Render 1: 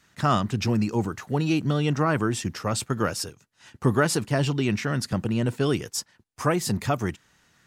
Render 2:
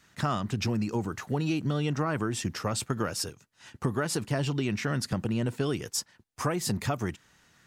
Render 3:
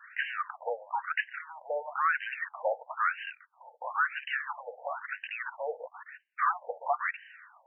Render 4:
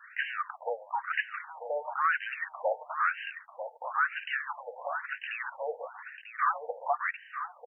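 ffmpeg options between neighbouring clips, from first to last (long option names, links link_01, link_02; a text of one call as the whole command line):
ffmpeg -i in.wav -af "acompressor=threshold=-25dB:ratio=6" out.wav
ffmpeg -i in.wav -filter_complex "[0:a]asplit=2[link_01][link_02];[link_02]highpass=frequency=720:poles=1,volume=21dB,asoftclip=type=tanh:threshold=-14.5dB[link_03];[link_01][link_03]amix=inputs=2:normalize=0,lowpass=frequency=7000:poles=1,volume=-6dB,afftfilt=real='re*between(b*sr/1024,620*pow(2200/620,0.5+0.5*sin(2*PI*1*pts/sr))/1.41,620*pow(2200/620,0.5+0.5*sin(2*PI*1*pts/sr))*1.41)':imag='im*between(b*sr/1024,620*pow(2200/620,0.5+0.5*sin(2*PI*1*pts/sr))/1.41,620*pow(2200/620,0.5+0.5*sin(2*PI*1*pts/sr))*1.41)':win_size=1024:overlap=0.75" out.wav
ffmpeg -i in.wav -af "aecho=1:1:943:0.335" out.wav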